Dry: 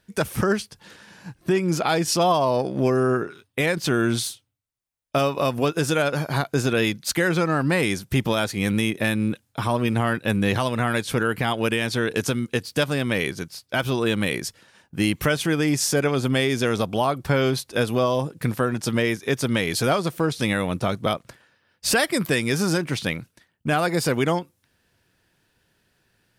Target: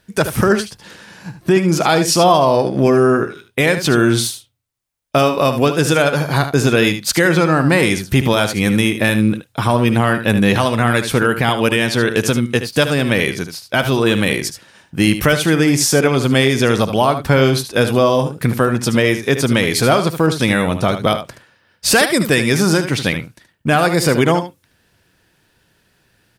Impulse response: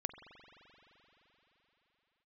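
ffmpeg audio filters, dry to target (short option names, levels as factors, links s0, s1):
-filter_complex "[0:a]aecho=1:1:75:0.316,asplit=2[s0][s1];[1:a]atrim=start_sample=2205,atrim=end_sample=3528[s2];[s1][s2]afir=irnorm=-1:irlink=0,volume=0.944[s3];[s0][s3]amix=inputs=2:normalize=0,volume=1.33"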